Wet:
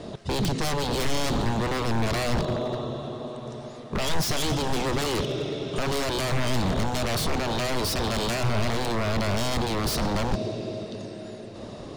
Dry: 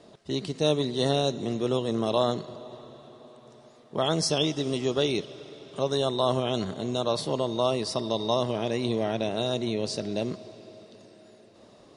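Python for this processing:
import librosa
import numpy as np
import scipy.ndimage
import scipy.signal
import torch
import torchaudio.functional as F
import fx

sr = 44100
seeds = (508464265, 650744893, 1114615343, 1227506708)

p1 = fx.over_compress(x, sr, threshold_db=-34.0, ratio=-1.0)
p2 = x + (p1 * 10.0 ** (1.0 / 20.0))
p3 = fx.high_shelf(p2, sr, hz=7700.0, db=-5.0)
p4 = 10.0 ** (-25.5 / 20.0) * (np.abs((p3 / 10.0 ** (-25.5 / 20.0) + 3.0) % 4.0 - 2.0) - 1.0)
p5 = fx.low_shelf(p4, sr, hz=150.0, db=11.5)
y = p5 * 10.0 ** (2.5 / 20.0)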